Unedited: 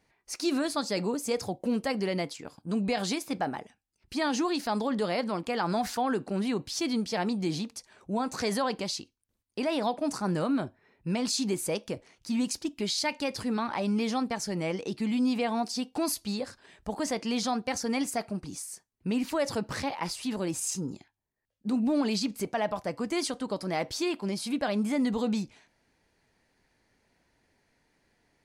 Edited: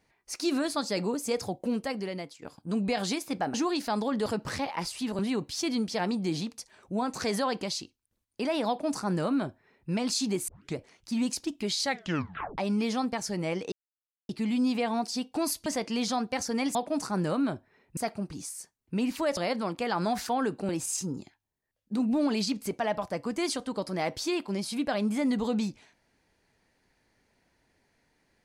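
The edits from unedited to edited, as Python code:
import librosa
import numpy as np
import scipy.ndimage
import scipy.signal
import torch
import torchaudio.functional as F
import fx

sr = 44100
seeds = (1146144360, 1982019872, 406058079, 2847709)

y = fx.edit(x, sr, fx.fade_out_to(start_s=1.56, length_s=0.86, floor_db=-11.0),
    fx.cut(start_s=3.54, length_s=0.79),
    fx.swap(start_s=5.05, length_s=1.32, other_s=19.5, other_length_s=0.93),
    fx.duplicate(start_s=9.86, length_s=1.22, to_s=18.1),
    fx.tape_start(start_s=11.66, length_s=0.29),
    fx.tape_stop(start_s=13.0, length_s=0.76),
    fx.insert_silence(at_s=14.9, length_s=0.57),
    fx.cut(start_s=16.27, length_s=0.74), tone=tone)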